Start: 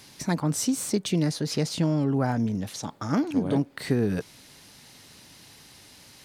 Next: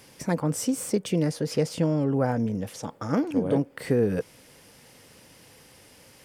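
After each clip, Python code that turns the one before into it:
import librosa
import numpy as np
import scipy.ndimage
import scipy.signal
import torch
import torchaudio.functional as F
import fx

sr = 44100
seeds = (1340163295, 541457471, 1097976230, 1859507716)

y = fx.graphic_eq_31(x, sr, hz=(500, 4000, 6300), db=(11, -10, -4))
y = y * librosa.db_to_amplitude(-1.0)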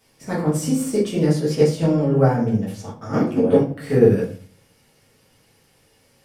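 y = fx.room_shoebox(x, sr, seeds[0], volume_m3=66.0, walls='mixed', distance_m=1.5)
y = fx.upward_expand(y, sr, threshold_db=-38.0, expansion=1.5)
y = y * librosa.db_to_amplitude(1.0)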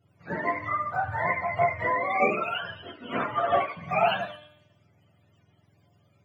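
y = fx.octave_mirror(x, sr, pivot_hz=560.0)
y = fx.comb_fb(y, sr, f0_hz=300.0, decay_s=1.0, harmonics='all', damping=0.0, mix_pct=70)
y = y * librosa.db_to_amplitude(5.5)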